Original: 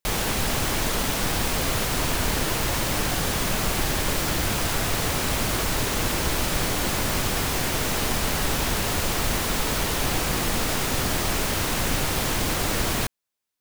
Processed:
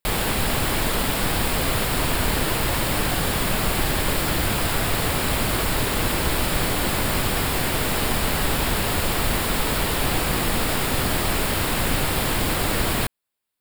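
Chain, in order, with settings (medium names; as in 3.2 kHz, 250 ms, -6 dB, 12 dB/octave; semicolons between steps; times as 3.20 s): peaking EQ 6.1 kHz -13.5 dB 0.28 oct; trim +2.5 dB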